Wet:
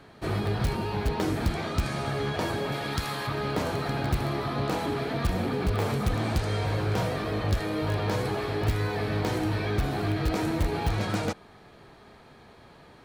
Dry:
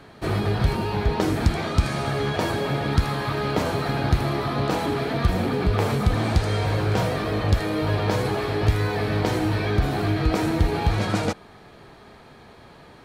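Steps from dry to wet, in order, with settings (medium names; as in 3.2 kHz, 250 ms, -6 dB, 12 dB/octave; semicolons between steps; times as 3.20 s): 2.72–3.27 s: tilt EQ +2 dB/octave; in parallel at -10 dB: integer overflow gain 13 dB; on the sum: trim -7 dB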